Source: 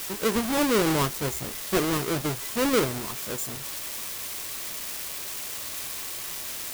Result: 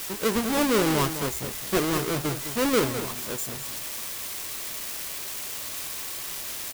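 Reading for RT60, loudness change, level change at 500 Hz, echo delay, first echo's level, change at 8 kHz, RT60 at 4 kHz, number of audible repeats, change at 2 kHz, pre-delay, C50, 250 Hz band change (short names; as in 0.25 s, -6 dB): none, +0.5 dB, +0.5 dB, 0.207 s, -10.5 dB, +0.5 dB, none, 1, +0.5 dB, none, none, +0.5 dB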